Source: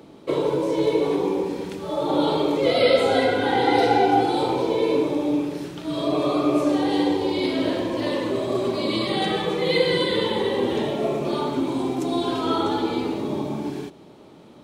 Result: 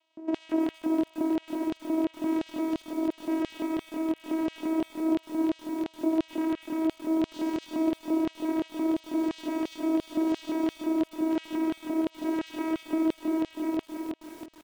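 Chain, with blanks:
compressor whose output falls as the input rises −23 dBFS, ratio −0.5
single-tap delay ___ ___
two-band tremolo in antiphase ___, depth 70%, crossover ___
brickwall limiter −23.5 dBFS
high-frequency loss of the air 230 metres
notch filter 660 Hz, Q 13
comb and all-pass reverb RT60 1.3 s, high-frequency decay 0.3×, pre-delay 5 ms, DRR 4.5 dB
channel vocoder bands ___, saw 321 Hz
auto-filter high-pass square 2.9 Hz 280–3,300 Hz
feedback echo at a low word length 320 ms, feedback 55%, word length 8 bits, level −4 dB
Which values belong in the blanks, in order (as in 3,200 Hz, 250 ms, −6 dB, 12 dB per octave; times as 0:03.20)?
100 ms, −10.5 dB, 1 Hz, 600 Hz, 4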